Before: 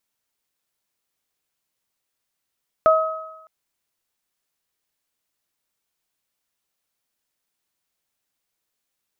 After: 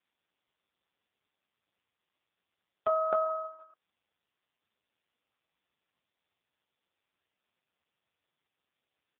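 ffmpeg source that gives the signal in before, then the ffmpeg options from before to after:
-f lavfi -i "aevalsrc='0.282*pow(10,-3*t/0.88)*sin(2*PI*637*t)+0.211*pow(10,-3*t/1.05)*sin(2*PI*1274*t)':d=0.61:s=44100"
-filter_complex "[0:a]acompressor=threshold=0.0794:ratio=8,asplit=2[s0][s1];[s1]aecho=0:1:267:0.531[s2];[s0][s2]amix=inputs=2:normalize=0" -ar 8000 -c:a libopencore_amrnb -b:a 4750

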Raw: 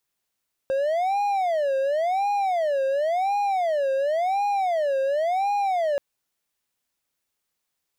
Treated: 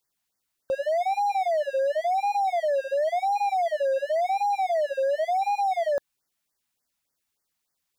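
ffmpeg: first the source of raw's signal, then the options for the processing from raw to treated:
-f lavfi -i "aevalsrc='0.119*(1-4*abs(mod((676.5*t-141.5/(2*PI*0.93)*sin(2*PI*0.93*t))+0.25,1)-0.5))':d=5.28:s=44100"
-af "afftfilt=real='re*(1-between(b*sr/1024,380*pow(3200/380,0.5+0.5*sin(2*PI*3.4*pts/sr))/1.41,380*pow(3200/380,0.5+0.5*sin(2*PI*3.4*pts/sr))*1.41))':imag='im*(1-between(b*sr/1024,380*pow(3200/380,0.5+0.5*sin(2*PI*3.4*pts/sr))/1.41,380*pow(3200/380,0.5+0.5*sin(2*PI*3.4*pts/sr))*1.41))':win_size=1024:overlap=0.75"

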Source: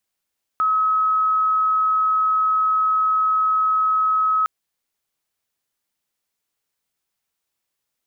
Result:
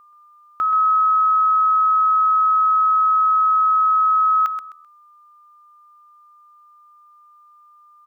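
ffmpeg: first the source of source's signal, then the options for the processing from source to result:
-f lavfi -i "sine=f=1280:d=3.86:r=44100,volume=2.56dB"
-filter_complex "[0:a]aeval=exprs='val(0)+0.00398*sin(2*PI*1200*n/s)':c=same,asplit=2[s0][s1];[s1]aecho=0:1:129|258|387:0.376|0.0977|0.0254[s2];[s0][s2]amix=inputs=2:normalize=0"

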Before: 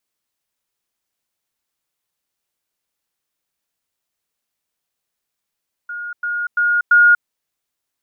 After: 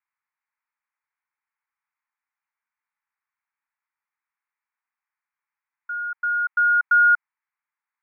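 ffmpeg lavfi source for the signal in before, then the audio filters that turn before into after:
-f lavfi -i "aevalsrc='pow(10,(-25+6*floor(t/0.34))/20)*sin(2*PI*1430*t)*clip(min(mod(t,0.34),0.24-mod(t,0.34))/0.005,0,1)':d=1.36:s=44100"
-af "asoftclip=type=tanh:threshold=0.237,asuperpass=centerf=1400:order=12:qfactor=0.91"

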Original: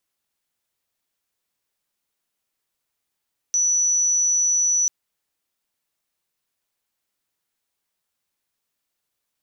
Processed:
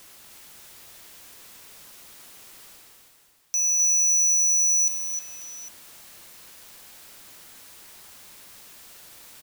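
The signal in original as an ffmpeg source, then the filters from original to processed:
-f lavfi -i "sine=f=5930:d=1.34:r=44100,volume=1.56dB"
-af "areverse,acompressor=mode=upward:threshold=0.0631:ratio=2.5,areverse,aeval=exprs='0.106*(abs(mod(val(0)/0.106+3,4)-2)-1)':c=same,aecho=1:1:101|257|310|538|804:0.15|0.398|0.422|0.237|0.15"

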